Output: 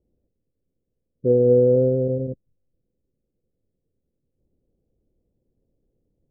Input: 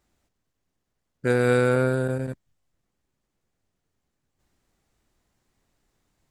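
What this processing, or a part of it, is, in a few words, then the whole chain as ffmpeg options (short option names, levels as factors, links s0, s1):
under water: -af "lowpass=f=470:w=0.5412,lowpass=f=470:w=1.3066,equalizer=f=510:t=o:w=0.38:g=9,volume=1.26"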